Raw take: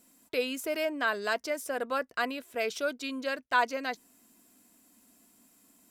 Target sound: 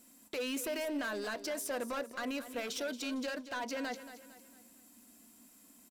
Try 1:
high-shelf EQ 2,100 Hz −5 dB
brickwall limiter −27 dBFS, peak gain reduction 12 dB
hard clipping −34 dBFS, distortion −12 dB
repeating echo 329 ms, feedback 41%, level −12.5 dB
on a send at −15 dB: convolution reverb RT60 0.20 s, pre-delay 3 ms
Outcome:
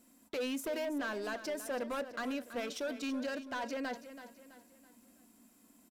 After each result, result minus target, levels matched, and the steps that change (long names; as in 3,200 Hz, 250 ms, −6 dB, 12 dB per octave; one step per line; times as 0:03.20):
echo 101 ms late; 4,000 Hz band −2.5 dB
change: repeating echo 228 ms, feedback 41%, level −12.5 dB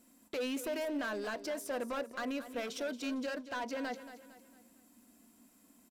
4,000 Hz band −2.5 dB
change: high-shelf EQ 2,100 Hz +2 dB